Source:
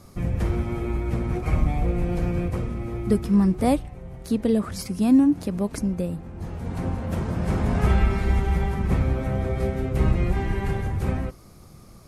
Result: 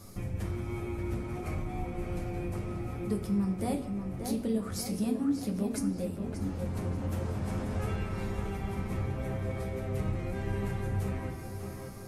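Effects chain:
high-shelf EQ 5,600 Hz +8.5 dB
downward compressor 2.5 to 1, threshold −32 dBFS, peak gain reduction 12.5 dB
tape delay 584 ms, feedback 64%, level −5 dB, low-pass 3,200 Hz
on a send at −2 dB: convolution reverb RT60 0.85 s, pre-delay 9 ms
on the sum: level −4.5 dB

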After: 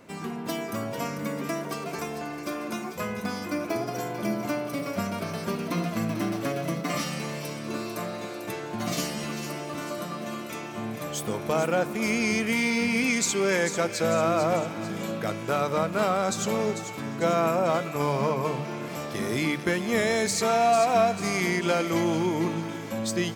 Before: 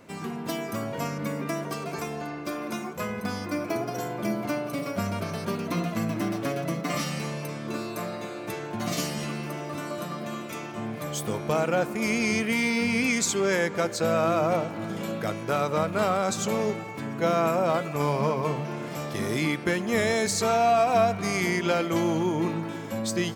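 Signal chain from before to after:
mains-hum notches 50/100/150 Hz
delay with a high-pass on its return 445 ms, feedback 49%, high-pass 2,200 Hz, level −8.5 dB

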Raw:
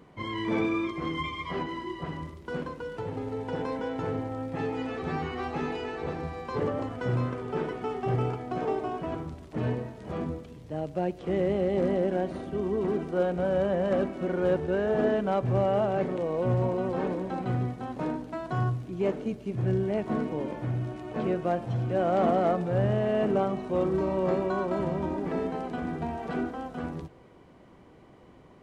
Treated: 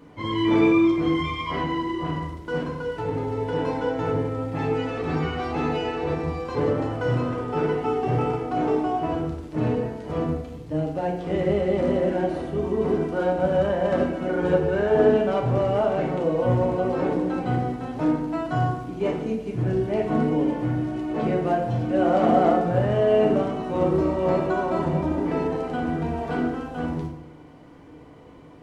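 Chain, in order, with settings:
feedback delay network reverb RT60 0.78 s, low-frequency decay 1.05×, high-frequency decay 0.75×, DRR −1 dB
level +2 dB

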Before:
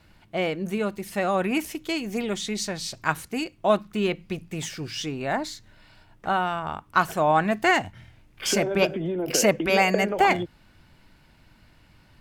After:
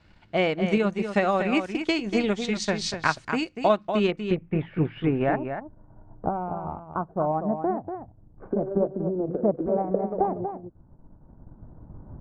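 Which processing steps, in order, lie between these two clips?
camcorder AGC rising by 9.1 dB per second
Bessel low-pass filter 5,100 Hz, order 8, from 0:04.10 1,500 Hz, from 0:05.35 620 Hz
transient designer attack +3 dB, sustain −8 dB
single-tap delay 240 ms −8 dB
level −2 dB

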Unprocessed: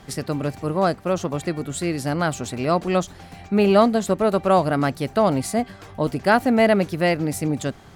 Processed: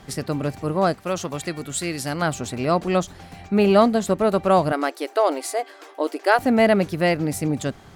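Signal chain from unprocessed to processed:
0:00.93–0:02.22: tilt shelving filter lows −4.5 dB, about 1,400 Hz
0:04.72–0:06.39: linear-phase brick-wall high-pass 280 Hz

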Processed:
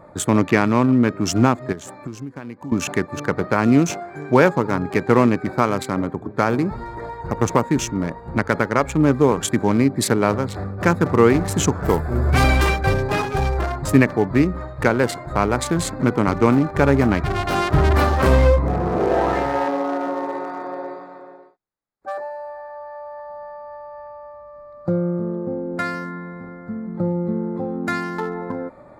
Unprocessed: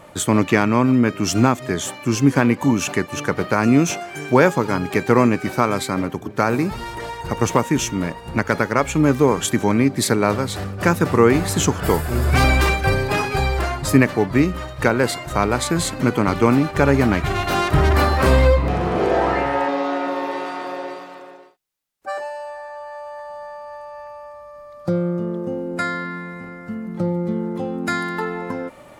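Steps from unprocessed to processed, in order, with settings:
adaptive Wiener filter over 15 samples
0:01.72–0:02.72: downward compressor 12 to 1, threshold −29 dBFS, peak gain reduction 20.5 dB

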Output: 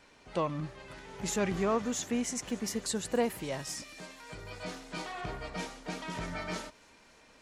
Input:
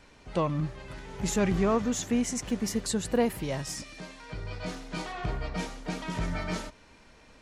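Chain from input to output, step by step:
low-shelf EQ 160 Hz −11 dB
on a send: delay with a high-pass on its return 287 ms, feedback 82%, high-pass 5,300 Hz, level −21.5 dB
on the sum: level −2 dB

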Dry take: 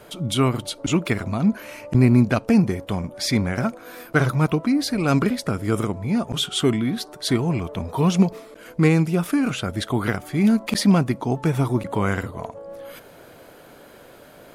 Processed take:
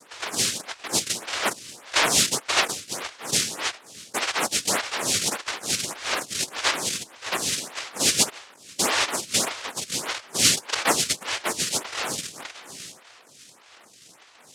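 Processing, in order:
pitch shift by two crossfaded delay taps +1 semitone
cochlear-implant simulation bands 1
phaser with staggered stages 1.7 Hz

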